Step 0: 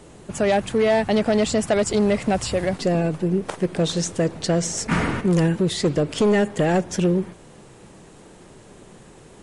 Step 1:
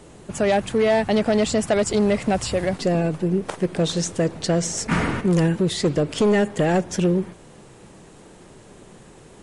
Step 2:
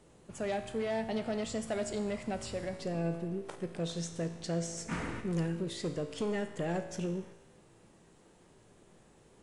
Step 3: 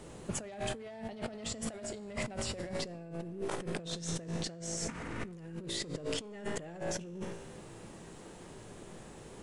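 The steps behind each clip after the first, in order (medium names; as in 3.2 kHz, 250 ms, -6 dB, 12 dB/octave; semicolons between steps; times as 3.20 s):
no audible change
feedback comb 56 Hz, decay 1.1 s, harmonics all, mix 70%; trim -7 dB
compressor with a negative ratio -45 dBFS, ratio -1; trim +4 dB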